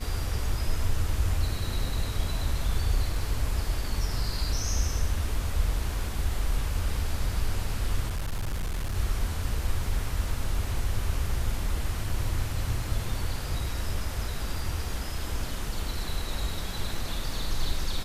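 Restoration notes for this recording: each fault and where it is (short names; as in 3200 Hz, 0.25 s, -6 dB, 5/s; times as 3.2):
8.08–8.97 clipped -26 dBFS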